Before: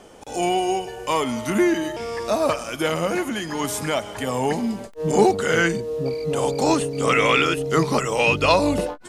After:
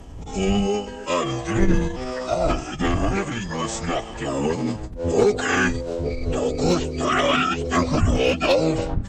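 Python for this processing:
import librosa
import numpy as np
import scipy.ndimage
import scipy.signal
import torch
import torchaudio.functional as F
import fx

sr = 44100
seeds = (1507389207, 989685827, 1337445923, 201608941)

y = fx.dmg_wind(x, sr, seeds[0], corner_hz=110.0, level_db=-25.0)
y = fx.pitch_keep_formants(y, sr, semitones=-10.5)
y = fx.clip_asym(y, sr, top_db=-12.0, bottom_db=-7.0)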